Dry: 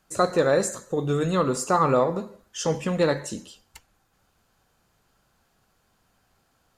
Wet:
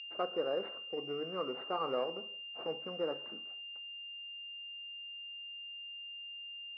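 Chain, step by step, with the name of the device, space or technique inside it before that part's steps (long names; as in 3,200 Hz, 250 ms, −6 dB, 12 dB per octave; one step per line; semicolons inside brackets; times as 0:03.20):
toy sound module (linearly interpolated sample-rate reduction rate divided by 8×; switching amplifier with a slow clock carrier 2,800 Hz; loudspeaker in its box 500–4,700 Hz, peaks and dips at 580 Hz −5 dB, 940 Hz −10 dB, 1,800 Hz −9 dB, 2,900 Hz −7 dB, 4,100 Hz −5 dB)
level −7 dB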